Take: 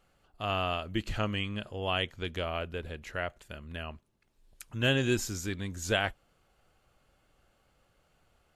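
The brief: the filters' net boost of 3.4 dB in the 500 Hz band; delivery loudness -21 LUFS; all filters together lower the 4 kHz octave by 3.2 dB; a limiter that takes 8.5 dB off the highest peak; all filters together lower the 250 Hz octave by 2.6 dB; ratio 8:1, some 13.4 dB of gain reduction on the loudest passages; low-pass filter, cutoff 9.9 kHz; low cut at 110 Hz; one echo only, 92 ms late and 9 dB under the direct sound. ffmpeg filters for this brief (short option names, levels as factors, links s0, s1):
-af "highpass=110,lowpass=9900,equalizer=f=250:t=o:g=-5.5,equalizer=f=500:t=o:g=6,equalizer=f=4000:t=o:g=-5,acompressor=threshold=0.0158:ratio=8,alimiter=level_in=2.37:limit=0.0631:level=0:latency=1,volume=0.422,aecho=1:1:92:0.355,volume=13.3"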